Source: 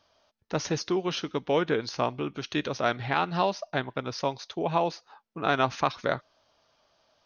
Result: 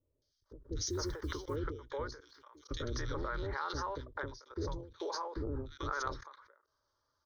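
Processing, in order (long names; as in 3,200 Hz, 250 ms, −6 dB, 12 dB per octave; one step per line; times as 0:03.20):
sub-octave generator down 2 octaves, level +1 dB
0:03.50–0:04.51: downward compressor 6 to 1, threshold −31 dBFS, peak gain reduction 9.5 dB
three-band delay without the direct sound lows, highs, mids 220/440 ms, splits 460/2,600 Hz
0:00.86–0:01.56: floating-point word with a short mantissa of 4 bits
0:02.20–0:02.71: first difference
output level in coarse steps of 22 dB
phaser with its sweep stopped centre 710 Hz, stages 6
every ending faded ahead of time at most 110 dB per second
level +10.5 dB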